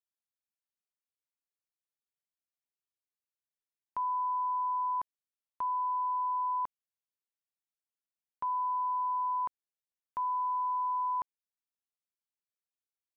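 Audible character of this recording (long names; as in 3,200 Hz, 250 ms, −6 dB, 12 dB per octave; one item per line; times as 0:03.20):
background noise floor −96 dBFS
spectral slope −2.5 dB per octave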